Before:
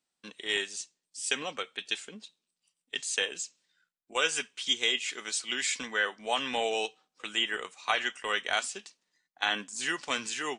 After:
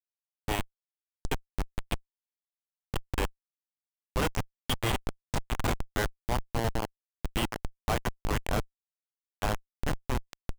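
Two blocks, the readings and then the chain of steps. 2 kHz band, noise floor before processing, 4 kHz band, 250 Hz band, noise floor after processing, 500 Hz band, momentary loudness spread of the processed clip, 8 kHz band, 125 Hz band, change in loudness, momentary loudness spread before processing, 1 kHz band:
−7.5 dB, below −85 dBFS, −9.5 dB, +6.5 dB, below −85 dBFS, 0.0 dB, 8 LU, −8.5 dB, +24.0 dB, −3.0 dB, 10 LU, 0.0 dB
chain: comparator with hysteresis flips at −23 dBFS
dynamic equaliser 910 Hz, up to +5 dB, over −54 dBFS, Q 1.7
level +7 dB

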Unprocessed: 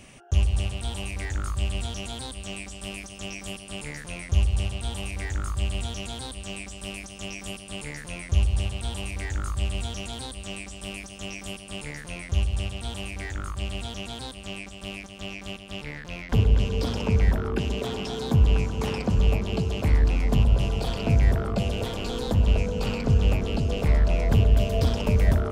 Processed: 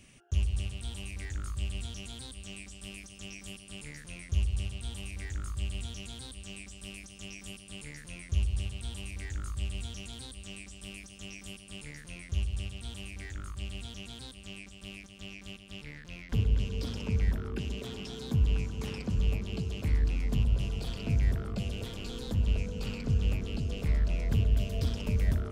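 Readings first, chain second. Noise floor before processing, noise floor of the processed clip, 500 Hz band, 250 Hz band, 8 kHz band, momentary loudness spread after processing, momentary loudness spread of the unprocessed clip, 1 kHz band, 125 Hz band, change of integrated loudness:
−42 dBFS, −50 dBFS, −12.5 dB, −8.5 dB, −7.0 dB, 15 LU, 14 LU, −15.0 dB, −7.0 dB, −7.5 dB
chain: parametric band 760 Hz −9.5 dB 1.6 octaves
level −7 dB

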